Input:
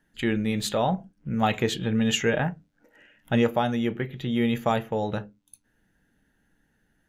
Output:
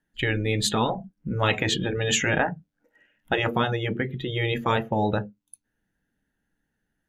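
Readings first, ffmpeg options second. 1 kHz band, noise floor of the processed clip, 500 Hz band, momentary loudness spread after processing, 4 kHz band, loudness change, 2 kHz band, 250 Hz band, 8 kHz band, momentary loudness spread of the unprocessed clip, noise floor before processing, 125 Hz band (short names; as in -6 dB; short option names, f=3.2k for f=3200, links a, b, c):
+1.0 dB, -79 dBFS, 0.0 dB, 7 LU, +4.0 dB, +0.5 dB, +5.0 dB, -4.0 dB, +5.0 dB, 8 LU, -70 dBFS, +2.0 dB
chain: -af "afftfilt=real='re*lt(hypot(re,im),0.316)':imag='im*lt(hypot(re,im),0.316)':win_size=1024:overlap=0.75,afftdn=nr=15:nf=-40,volume=6dB"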